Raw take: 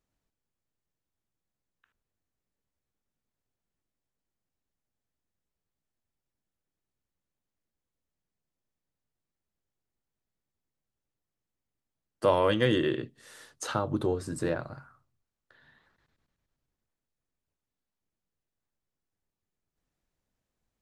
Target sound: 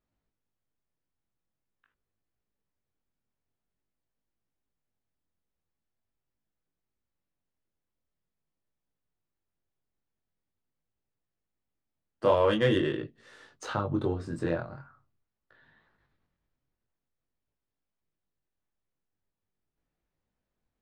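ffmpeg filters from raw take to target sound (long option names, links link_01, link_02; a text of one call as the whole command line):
ffmpeg -i in.wav -af "flanger=delay=18:depth=6.2:speed=0.45,adynamicsmooth=sensitivity=4:basefreq=4200,volume=3dB" out.wav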